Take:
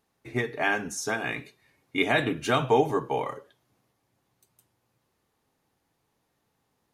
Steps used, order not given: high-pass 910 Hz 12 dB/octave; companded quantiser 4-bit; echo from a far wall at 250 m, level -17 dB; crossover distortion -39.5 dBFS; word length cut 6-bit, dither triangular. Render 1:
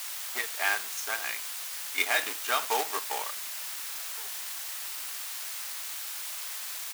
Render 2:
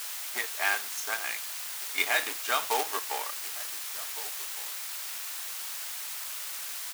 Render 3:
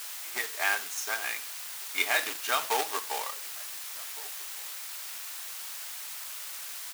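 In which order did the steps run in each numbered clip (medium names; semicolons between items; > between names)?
echo from a far wall > crossover distortion > word length cut > companded quantiser > high-pass; crossover distortion > word length cut > echo from a far wall > companded quantiser > high-pass; companded quantiser > word length cut > echo from a far wall > crossover distortion > high-pass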